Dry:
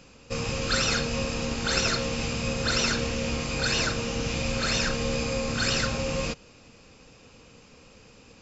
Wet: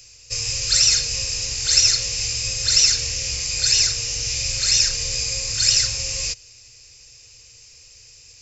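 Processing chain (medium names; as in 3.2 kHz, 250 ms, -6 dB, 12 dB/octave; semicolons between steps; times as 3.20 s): FFT filter 120 Hz 0 dB, 180 Hz -26 dB, 400 Hz -11 dB, 870 Hz -13 dB, 1.4 kHz -11 dB, 2 kHz +2 dB, 3.4 kHz +1 dB, 5.2 kHz +15 dB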